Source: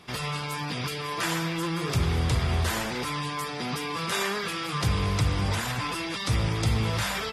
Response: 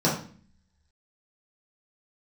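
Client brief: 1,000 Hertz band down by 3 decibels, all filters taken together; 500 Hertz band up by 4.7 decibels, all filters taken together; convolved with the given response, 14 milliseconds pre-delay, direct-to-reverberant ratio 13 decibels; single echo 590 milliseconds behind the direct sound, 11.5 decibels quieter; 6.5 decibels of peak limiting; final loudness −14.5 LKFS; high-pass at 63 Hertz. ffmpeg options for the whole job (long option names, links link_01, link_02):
-filter_complex "[0:a]highpass=63,equalizer=frequency=500:width_type=o:gain=7,equalizer=frequency=1000:width_type=o:gain=-5.5,alimiter=limit=-19dB:level=0:latency=1,aecho=1:1:590:0.266,asplit=2[link_01][link_02];[1:a]atrim=start_sample=2205,adelay=14[link_03];[link_02][link_03]afir=irnorm=-1:irlink=0,volume=-27.5dB[link_04];[link_01][link_04]amix=inputs=2:normalize=0,volume=13.5dB"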